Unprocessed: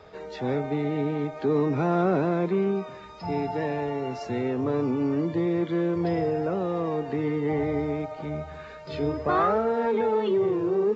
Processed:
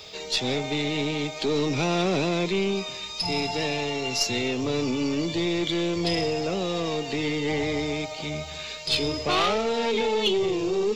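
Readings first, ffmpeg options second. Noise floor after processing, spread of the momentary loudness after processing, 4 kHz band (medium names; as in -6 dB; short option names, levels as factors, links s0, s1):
-37 dBFS, 5 LU, +20.5 dB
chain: -af "asoftclip=type=tanh:threshold=0.15,aexciter=amount=12.8:drive=3.2:freq=2400,aeval=exprs='0.282*(cos(1*acos(clip(val(0)/0.282,-1,1)))-cos(1*PI/2))+0.0224*(cos(4*acos(clip(val(0)/0.282,-1,1)))-cos(4*PI/2))':c=same"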